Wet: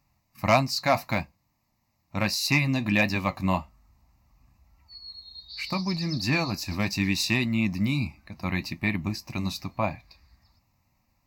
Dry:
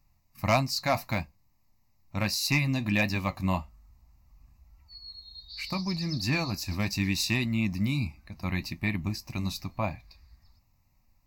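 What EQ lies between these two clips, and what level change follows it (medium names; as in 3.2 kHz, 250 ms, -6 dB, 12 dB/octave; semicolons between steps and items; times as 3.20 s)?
high-pass 140 Hz 6 dB/octave; treble shelf 5.1 kHz -5.5 dB; +4.5 dB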